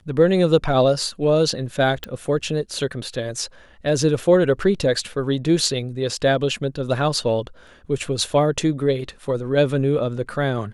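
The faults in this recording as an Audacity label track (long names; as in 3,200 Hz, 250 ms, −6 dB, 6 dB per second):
2.040000	2.040000	click −13 dBFS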